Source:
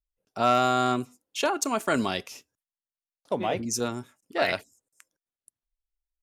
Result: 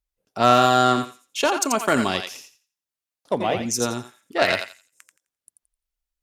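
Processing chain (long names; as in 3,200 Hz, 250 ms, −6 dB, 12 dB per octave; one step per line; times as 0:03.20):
harmonic generator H 3 −18 dB, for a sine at −10 dBFS
feedback echo with a high-pass in the loop 86 ms, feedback 24%, high-pass 1,100 Hz, level −5 dB
level +8 dB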